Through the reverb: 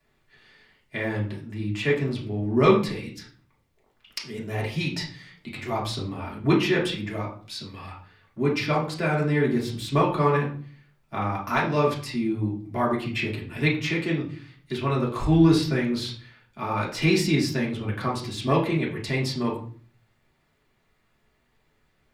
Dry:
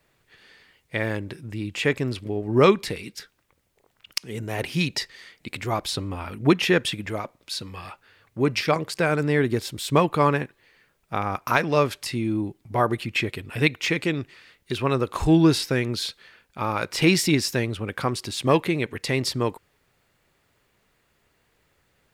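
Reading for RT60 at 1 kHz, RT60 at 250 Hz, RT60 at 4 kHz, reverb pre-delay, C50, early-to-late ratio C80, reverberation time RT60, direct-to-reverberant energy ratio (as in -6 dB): 0.40 s, 0.65 s, 0.35 s, 3 ms, 8.0 dB, 12.5 dB, 0.45 s, -5.0 dB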